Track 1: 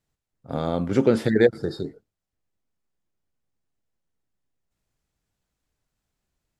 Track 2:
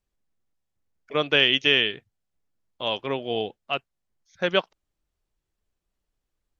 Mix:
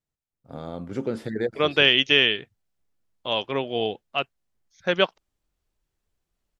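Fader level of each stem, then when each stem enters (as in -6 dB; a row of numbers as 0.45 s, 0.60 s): -9.5 dB, +1.5 dB; 0.00 s, 0.45 s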